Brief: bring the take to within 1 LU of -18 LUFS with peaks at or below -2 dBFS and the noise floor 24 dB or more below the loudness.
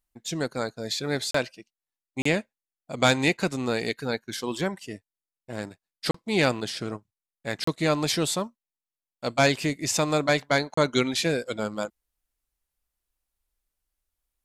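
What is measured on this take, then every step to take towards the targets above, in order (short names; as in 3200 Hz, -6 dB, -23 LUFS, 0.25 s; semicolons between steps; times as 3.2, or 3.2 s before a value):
dropouts 5; longest dropout 34 ms; loudness -26.5 LUFS; peak -8.0 dBFS; loudness target -18.0 LUFS
-> interpolate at 1.31/2.22/6.11/7.64/10.74, 34 ms; gain +8.5 dB; limiter -2 dBFS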